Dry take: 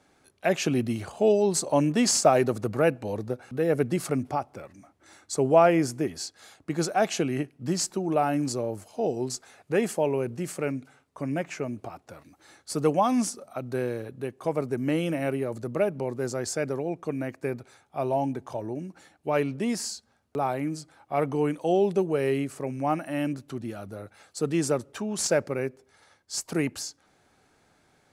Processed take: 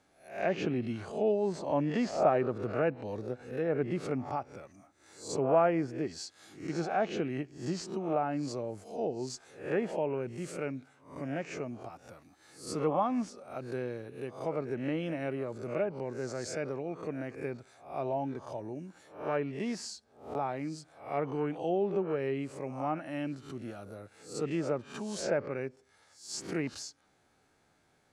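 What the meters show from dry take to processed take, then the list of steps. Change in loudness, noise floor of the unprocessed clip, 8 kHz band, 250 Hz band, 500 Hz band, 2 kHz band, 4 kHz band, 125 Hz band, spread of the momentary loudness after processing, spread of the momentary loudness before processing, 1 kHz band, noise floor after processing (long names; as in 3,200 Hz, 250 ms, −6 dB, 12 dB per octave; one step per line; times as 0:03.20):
−6.5 dB, −66 dBFS, −14.0 dB, −7.0 dB, −6.0 dB, −6.5 dB, −10.0 dB, −7.0 dB, 13 LU, 14 LU, −6.0 dB, −69 dBFS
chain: peak hold with a rise ahead of every peak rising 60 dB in 0.45 s
treble cut that deepens with the level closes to 2,100 Hz, closed at −19 dBFS
level −7.5 dB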